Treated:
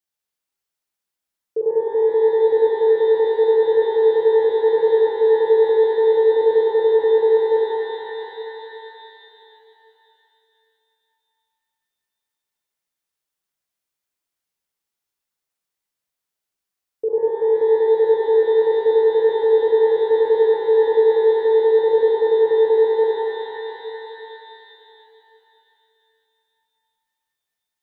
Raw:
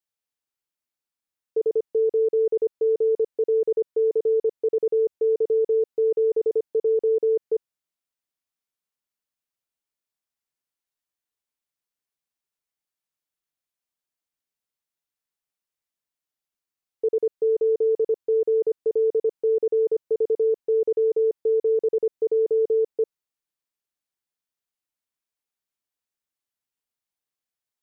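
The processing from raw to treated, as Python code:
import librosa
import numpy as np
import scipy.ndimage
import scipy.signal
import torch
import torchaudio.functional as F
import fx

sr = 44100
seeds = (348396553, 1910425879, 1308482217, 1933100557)

y = fx.hum_notches(x, sr, base_hz=60, count=8)
y = fx.rev_shimmer(y, sr, seeds[0], rt60_s=3.3, semitones=12, shimmer_db=-8, drr_db=-1.5)
y = y * librosa.db_to_amplitude(1.5)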